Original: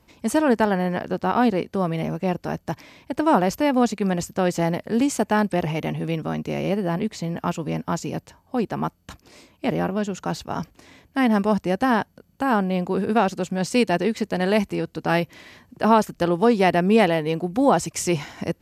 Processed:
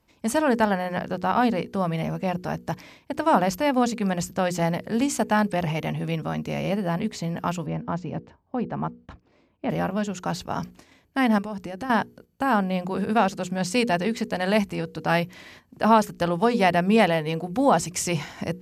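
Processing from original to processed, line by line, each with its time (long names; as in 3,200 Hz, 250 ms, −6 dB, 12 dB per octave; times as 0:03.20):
0:07.66–0:09.70: head-to-tape spacing loss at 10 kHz 32 dB
0:11.38–0:11.90: downward compressor 5 to 1, threshold −28 dBFS
whole clip: mains-hum notches 60/120/180/240/300/360/420/480 Hz; dynamic equaliser 360 Hz, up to −7 dB, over −37 dBFS, Q 2.3; noise gate −47 dBFS, range −8 dB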